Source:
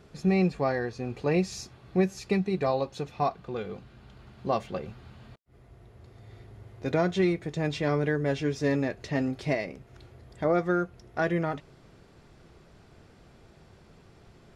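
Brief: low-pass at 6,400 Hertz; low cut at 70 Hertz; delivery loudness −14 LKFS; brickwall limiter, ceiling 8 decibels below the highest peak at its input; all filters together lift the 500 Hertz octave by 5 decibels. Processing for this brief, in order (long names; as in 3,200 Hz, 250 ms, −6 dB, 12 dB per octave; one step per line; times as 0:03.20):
high-pass filter 70 Hz
low-pass filter 6,400 Hz
parametric band 500 Hz +6.5 dB
level +15 dB
brickwall limiter −2.5 dBFS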